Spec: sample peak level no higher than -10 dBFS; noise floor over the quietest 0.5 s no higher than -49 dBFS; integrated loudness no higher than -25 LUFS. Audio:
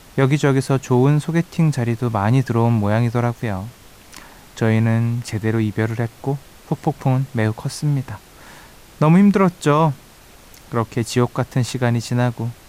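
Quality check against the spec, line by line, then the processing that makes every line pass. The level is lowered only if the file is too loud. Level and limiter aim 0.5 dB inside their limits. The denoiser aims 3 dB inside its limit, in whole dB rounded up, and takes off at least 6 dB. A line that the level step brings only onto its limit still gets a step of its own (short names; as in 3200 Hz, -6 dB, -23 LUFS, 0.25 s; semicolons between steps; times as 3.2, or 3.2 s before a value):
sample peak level -5.5 dBFS: fail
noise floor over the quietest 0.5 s -45 dBFS: fail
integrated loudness -19.0 LUFS: fail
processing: gain -6.5 dB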